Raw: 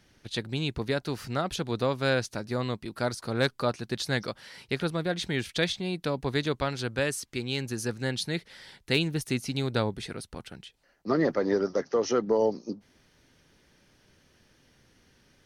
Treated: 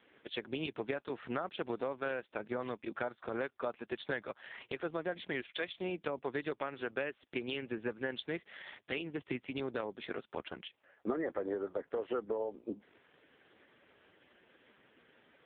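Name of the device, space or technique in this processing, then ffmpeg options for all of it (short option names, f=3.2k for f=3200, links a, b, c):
voicemail: -filter_complex "[0:a]asettb=1/sr,asplit=3[a][b][c];[a]atrim=end=5.414[d];[b]atrim=start=5.41:end=6.01,asetpts=PTS-STARTPTS,afade=t=in:d=0.004:c=qsin,afade=t=out:st=0.596:d=0.004:c=qsin,highpass=f=140:w=0.5412,highpass=f=140:w=1.3066[e];[c]atrim=start=6.006[f];[d][e]acrossfade=d=0.004:c1=hsin:c2=qsin[g];[g][f]acrossfade=d=0.004:c1=qsin:c2=hsin,highpass=330,lowpass=3.3k,acompressor=threshold=-39dB:ratio=8,volume=6.5dB" -ar 8000 -c:a libopencore_amrnb -b:a 4750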